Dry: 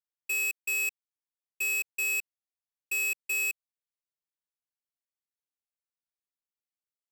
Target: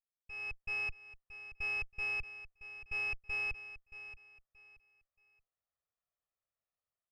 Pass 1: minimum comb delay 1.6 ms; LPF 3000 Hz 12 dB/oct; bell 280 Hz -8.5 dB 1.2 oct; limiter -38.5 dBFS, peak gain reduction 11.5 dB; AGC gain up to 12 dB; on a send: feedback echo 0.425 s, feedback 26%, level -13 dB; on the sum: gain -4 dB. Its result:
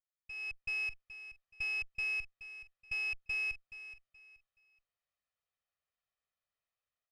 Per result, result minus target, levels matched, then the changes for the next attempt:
1000 Hz band -10.0 dB; echo 0.202 s early
change: LPF 1300 Hz 12 dB/oct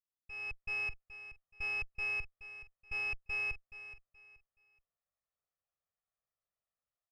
echo 0.202 s early
change: feedback echo 0.627 s, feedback 26%, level -13 dB

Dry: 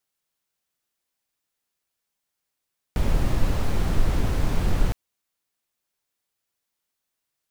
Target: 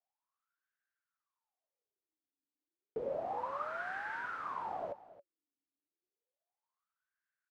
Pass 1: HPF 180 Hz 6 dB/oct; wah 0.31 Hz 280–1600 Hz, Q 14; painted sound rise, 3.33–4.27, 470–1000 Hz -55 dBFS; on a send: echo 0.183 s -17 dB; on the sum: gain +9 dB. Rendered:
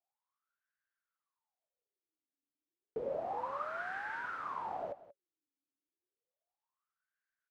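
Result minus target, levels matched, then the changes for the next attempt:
echo 90 ms early
change: echo 0.273 s -17 dB

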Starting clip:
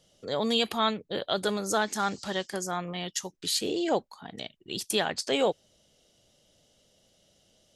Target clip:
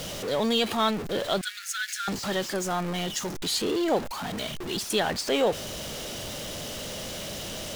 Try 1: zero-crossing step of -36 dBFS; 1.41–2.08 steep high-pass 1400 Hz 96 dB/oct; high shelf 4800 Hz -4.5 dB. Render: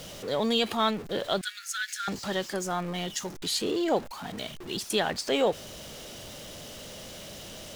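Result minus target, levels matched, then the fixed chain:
zero-crossing step: distortion -6 dB
zero-crossing step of -28.5 dBFS; 1.41–2.08 steep high-pass 1400 Hz 96 dB/oct; high shelf 4800 Hz -4.5 dB

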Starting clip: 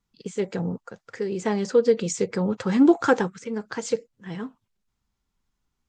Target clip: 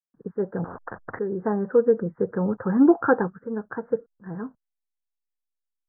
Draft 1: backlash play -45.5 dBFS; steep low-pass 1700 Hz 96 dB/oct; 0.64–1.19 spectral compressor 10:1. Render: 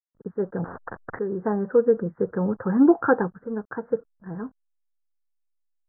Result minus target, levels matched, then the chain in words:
backlash: distortion +11 dB
backlash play -57 dBFS; steep low-pass 1700 Hz 96 dB/oct; 0.64–1.19 spectral compressor 10:1

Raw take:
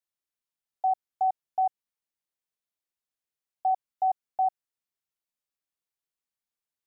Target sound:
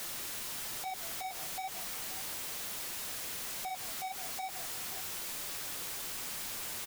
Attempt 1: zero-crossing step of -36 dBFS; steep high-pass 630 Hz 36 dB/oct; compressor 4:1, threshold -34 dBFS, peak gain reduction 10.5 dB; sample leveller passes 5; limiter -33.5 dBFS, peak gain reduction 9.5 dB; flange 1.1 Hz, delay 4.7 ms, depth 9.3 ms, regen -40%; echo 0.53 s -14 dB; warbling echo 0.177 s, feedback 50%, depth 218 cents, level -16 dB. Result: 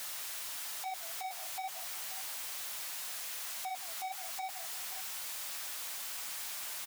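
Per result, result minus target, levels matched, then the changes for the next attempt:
compressor: peak gain reduction -4.5 dB; 500 Hz band -3.5 dB
change: compressor 4:1, threshold -40 dBFS, peak gain reduction 15 dB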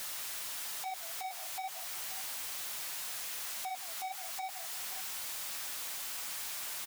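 500 Hz band -3.5 dB
remove: steep high-pass 630 Hz 36 dB/oct

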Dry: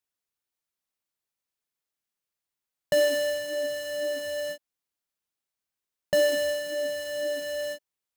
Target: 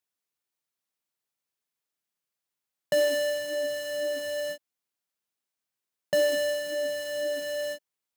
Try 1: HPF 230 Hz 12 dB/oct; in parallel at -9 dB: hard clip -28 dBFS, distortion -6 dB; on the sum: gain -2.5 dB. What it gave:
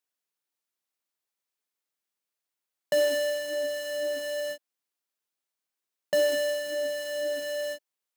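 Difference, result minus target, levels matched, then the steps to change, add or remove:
125 Hz band -6.0 dB
change: HPF 97 Hz 12 dB/oct

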